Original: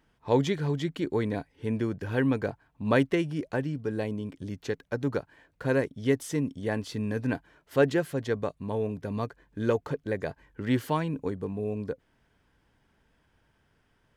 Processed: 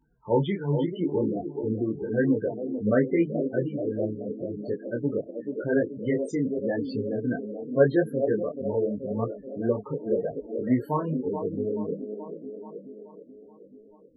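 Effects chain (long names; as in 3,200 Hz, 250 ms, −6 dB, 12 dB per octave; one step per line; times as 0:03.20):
on a send: delay with a band-pass on its return 430 ms, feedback 60%, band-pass 470 Hz, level −6 dB
on the sum: spectral peaks only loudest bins 16
parametric band 93 Hz −12.5 dB 0.34 octaves
micro pitch shift up and down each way 30 cents
level +6 dB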